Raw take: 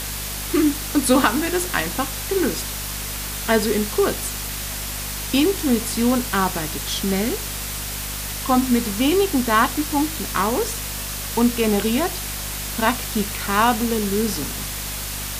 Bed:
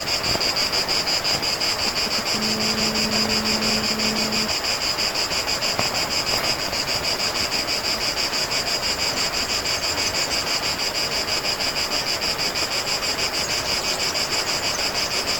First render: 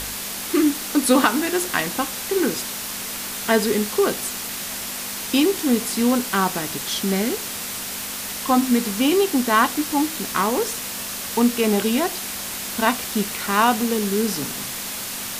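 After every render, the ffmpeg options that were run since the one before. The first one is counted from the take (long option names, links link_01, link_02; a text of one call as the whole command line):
ffmpeg -i in.wav -af "bandreject=frequency=50:width_type=h:width=4,bandreject=frequency=100:width_type=h:width=4,bandreject=frequency=150:width_type=h:width=4" out.wav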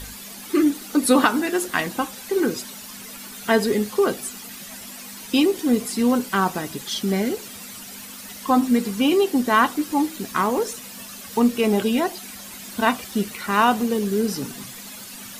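ffmpeg -i in.wav -af "afftdn=noise_reduction=12:noise_floor=-30" out.wav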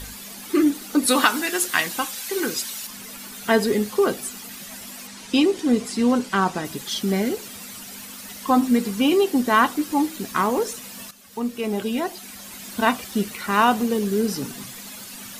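ffmpeg -i in.wav -filter_complex "[0:a]asettb=1/sr,asplit=3[link_01][link_02][link_03];[link_01]atrim=end=1.084[link_04];[link_02]atrim=start=1.08:end=2.87,asetpts=PTS-STARTPTS,afade=type=in:duration=0.004:curve=qsin,afade=type=out:start_time=1.786:duration=0.004:curve=qsin,tiltshelf=frequency=1100:gain=-6.5[link_05];[link_03]atrim=start=2.866[link_06];[link_04][link_05]acrossfade=duration=0.004:curve1=hsin:curve2=qsin[link_07];[link_07][link_06]acrossfade=duration=0.004:curve1=qsin:curve2=hsin,asettb=1/sr,asplit=3[link_08][link_09][link_10];[link_08]atrim=end=5.074[link_11];[link_09]atrim=start=5.07:end=6.65,asetpts=PTS-STARTPTS,afade=type=in:duration=0.004:curve=qsin,afade=type=out:start_time=1.576:duration=0.004:curve=qsin,lowpass=8300[link_12];[link_10]atrim=start=6.646[link_13];[link_11][link_12]acrossfade=duration=0.004:curve1=hsin:curve2=qsin[link_14];[link_14][link_13]acrossfade=duration=0.004:curve1=qsin:curve2=hsin,asplit=2[link_15][link_16];[link_15]atrim=end=11.11,asetpts=PTS-STARTPTS,afade=type=out:start_time=11.106:duration=0.004:curve=hsin:silence=0.211349[link_17];[link_16]atrim=start=11.11,asetpts=PTS-STARTPTS,afade=type=in:duration=1.57:silence=0.211349[link_18];[link_17][link_18]concat=n=2:v=0:a=1" out.wav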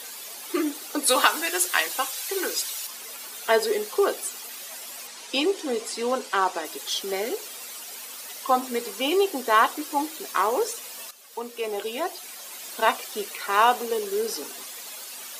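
ffmpeg -i in.wav -af "highpass=frequency=390:width=0.5412,highpass=frequency=390:width=1.3066,equalizer=frequency=1700:width=1.5:gain=-2.5" out.wav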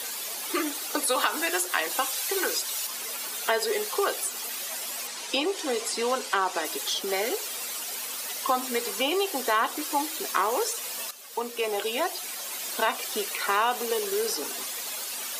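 ffmpeg -i in.wav -filter_complex "[0:a]asplit=2[link_01][link_02];[link_02]alimiter=limit=-15dB:level=0:latency=1,volume=-3dB[link_03];[link_01][link_03]amix=inputs=2:normalize=0,acrossover=split=530|1300[link_04][link_05][link_06];[link_04]acompressor=threshold=-35dB:ratio=4[link_07];[link_05]acompressor=threshold=-28dB:ratio=4[link_08];[link_06]acompressor=threshold=-27dB:ratio=4[link_09];[link_07][link_08][link_09]amix=inputs=3:normalize=0" out.wav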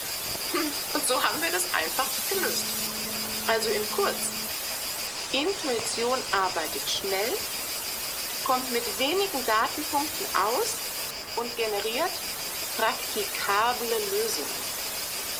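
ffmpeg -i in.wav -i bed.wav -filter_complex "[1:a]volume=-13.5dB[link_01];[0:a][link_01]amix=inputs=2:normalize=0" out.wav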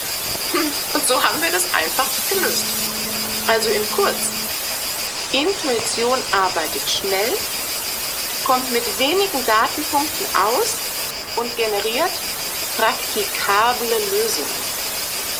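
ffmpeg -i in.wav -af "volume=8dB,alimiter=limit=-2dB:level=0:latency=1" out.wav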